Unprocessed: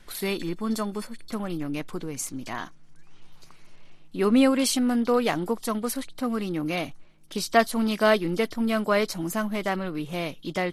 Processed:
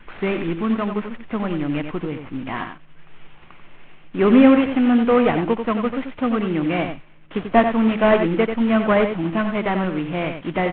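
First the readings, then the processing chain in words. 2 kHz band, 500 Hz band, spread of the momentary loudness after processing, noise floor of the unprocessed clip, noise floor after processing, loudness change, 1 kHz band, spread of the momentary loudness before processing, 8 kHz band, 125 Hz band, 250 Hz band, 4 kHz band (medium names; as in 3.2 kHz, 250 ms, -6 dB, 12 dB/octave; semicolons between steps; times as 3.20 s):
+4.5 dB, +6.5 dB, 13 LU, -49 dBFS, -44 dBFS, +6.5 dB, +6.0 dB, 13 LU, under -40 dB, +7.5 dB, +7.5 dB, -1.5 dB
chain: CVSD coder 16 kbps; delay 90 ms -7.5 dB; trim +7 dB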